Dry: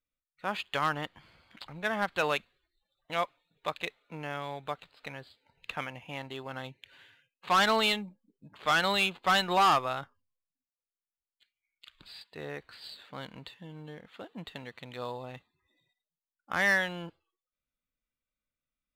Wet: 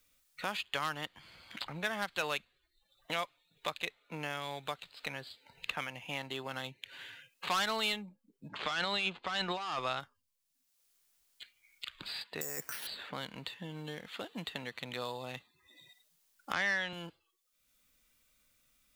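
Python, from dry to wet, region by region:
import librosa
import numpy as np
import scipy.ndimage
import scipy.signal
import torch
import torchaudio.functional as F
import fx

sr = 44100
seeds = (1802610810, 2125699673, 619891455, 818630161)

y = fx.chain(x, sr, fx.lowpass(hz=5600.0, slope=12),
    fx.over_compress(threshold_db=-30.0, ratio=-1.0), at=(8.49, 10.0))
y = fx.chain(y, sr, fx.highpass(hz=97.0, slope=12),
    fx.over_compress(threshold_db=-45.0, ratio=-1.0),
    fx.resample_bad(factor=6, down='filtered', up='zero_stuff'), at=(12.41, 12.87))
y = fx.chain(y, sr, fx.lowpass(hz=4500.0, slope=12),
    fx.band_squash(depth_pct=40), at=(16.53, 16.93))
y = fx.high_shelf(y, sr, hz=2400.0, db=9.0)
y = fx.band_squash(y, sr, depth_pct=70)
y = y * 10.0 ** (-6.0 / 20.0)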